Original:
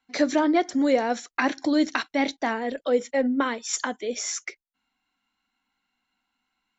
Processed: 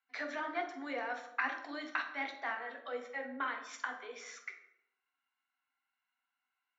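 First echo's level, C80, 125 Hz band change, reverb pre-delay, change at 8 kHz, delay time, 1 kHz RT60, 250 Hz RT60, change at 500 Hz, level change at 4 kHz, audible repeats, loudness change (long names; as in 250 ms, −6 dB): no echo audible, 10.0 dB, can't be measured, 3 ms, can't be measured, no echo audible, 0.70 s, 0.85 s, −18.0 dB, −15.5 dB, no echo audible, −14.5 dB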